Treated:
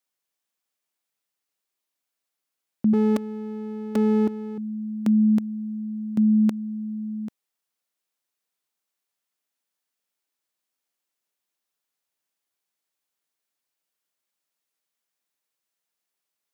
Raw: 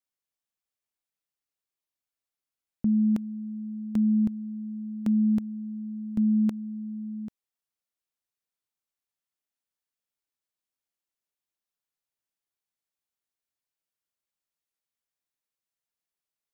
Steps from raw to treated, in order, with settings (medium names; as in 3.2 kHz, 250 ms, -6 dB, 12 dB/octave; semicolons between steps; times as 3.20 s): 2.93–4.58 s: comb filter that takes the minimum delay 3.5 ms; Bessel high-pass 200 Hz; trim +7 dB